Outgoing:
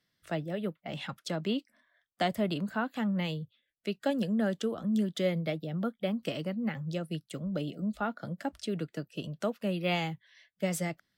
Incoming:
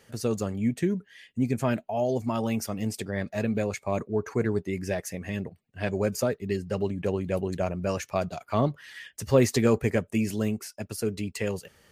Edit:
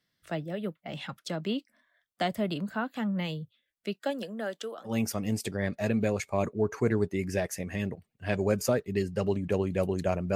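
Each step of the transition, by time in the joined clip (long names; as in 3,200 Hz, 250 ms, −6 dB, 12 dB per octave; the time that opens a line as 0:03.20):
outgoing
0:03.93–0:04.96: high-pass filter 280 Hz → 640 Hz
0:04.90: continue with incoming from 0:02.44, crossfade 0.12 s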